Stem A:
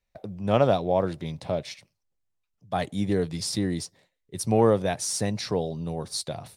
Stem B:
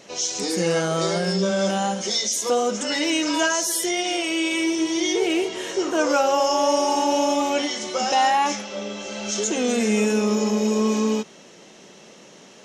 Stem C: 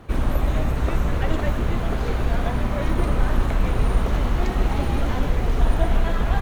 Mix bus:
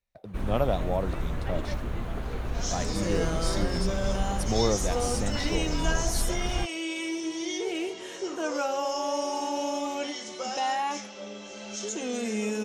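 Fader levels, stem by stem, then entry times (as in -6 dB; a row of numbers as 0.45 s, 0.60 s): -6.0 dB, -9.5 dB, -9.5 dB; 0.00 s, 2.45 s, 0.25 s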